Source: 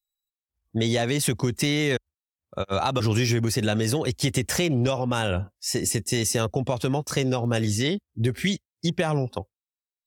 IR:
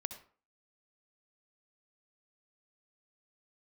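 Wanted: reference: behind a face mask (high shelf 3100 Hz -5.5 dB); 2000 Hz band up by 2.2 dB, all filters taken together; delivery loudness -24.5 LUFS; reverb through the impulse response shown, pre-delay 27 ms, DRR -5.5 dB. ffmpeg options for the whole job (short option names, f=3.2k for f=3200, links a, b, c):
-filter_complex "[0:a]equalizer=f=2k:t=o:g=4.5,asplit=2[a][b];[1:a]atrim=start_sample=2205,adelay=27[c];[b][c]afir=irnorm=-1:irlink=0,volume=6.5dB[d];[a][d]amix=inputs=2:normalize=0,highshelf=f=3.1k:g=-5.5,volume=-6dB"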